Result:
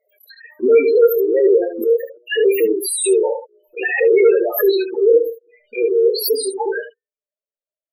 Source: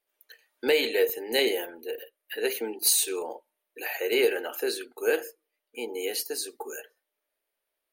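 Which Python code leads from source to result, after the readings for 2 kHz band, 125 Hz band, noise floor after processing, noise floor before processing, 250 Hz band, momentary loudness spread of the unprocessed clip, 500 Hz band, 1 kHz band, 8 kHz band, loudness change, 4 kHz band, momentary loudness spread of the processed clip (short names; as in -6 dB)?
+7.0 dB, n/a, under -85 dBFS, -84 dBFS, +13.0 dB, 16 LU, +15.0 dB, +9.0 dB, +3.5 dB, +11.5 dB, +1.0 dB, 11 LU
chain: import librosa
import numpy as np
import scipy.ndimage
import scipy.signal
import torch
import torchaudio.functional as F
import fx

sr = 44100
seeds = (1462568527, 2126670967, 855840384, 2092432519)

p1 = fx.hum_notches(x, sr, base_hz=60, count=8)
p2 = fx.leveller(p1, sr, passes=5)
p3 = fx.spec_topn(p2, sr, count=4)
p4 = p3 + fx.room_early_taps(p3, sr, ms=(26, 74), db=(-11.0, -9.0), dry=0)
p5 = fx.pre_swell(p4, sr, db_per_s=110.0)
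y = p5 * librosa.db_to_amplitude(2.5)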